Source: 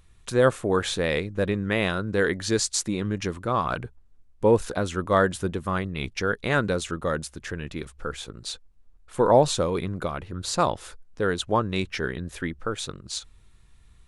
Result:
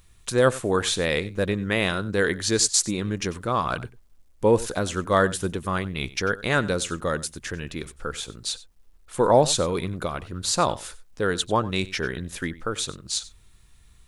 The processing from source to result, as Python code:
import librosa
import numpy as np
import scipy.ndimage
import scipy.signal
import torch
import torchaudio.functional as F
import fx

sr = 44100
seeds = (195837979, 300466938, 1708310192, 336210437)

p1 = fx.high_shelf(x, sr, hz=3500.0, db=7.5)
p2 = fx.quant_dither(p1, sr, seeds[0], bits=12, dither='none')
y = p2 + fx.echo_single(p2, sr, ms=94, db=-18.5, dry=0)